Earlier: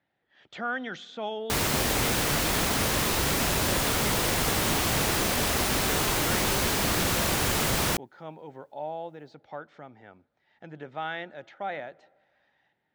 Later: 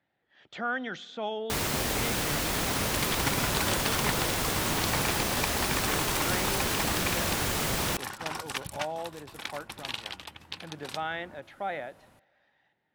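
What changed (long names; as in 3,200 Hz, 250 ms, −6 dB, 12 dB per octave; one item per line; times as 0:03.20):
first sound −3.5 dB
second sound: unmuted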